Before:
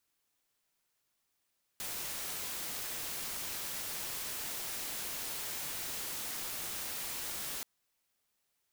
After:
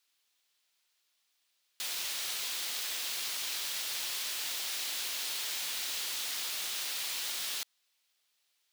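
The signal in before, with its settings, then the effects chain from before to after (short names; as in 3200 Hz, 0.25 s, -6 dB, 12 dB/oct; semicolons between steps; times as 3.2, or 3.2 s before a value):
noise white, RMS -39.5 dBFS 5.83 s
HPF 580 Hz 6 dB/oct; bell 3700 Hz +9.5 dB 1.6 oct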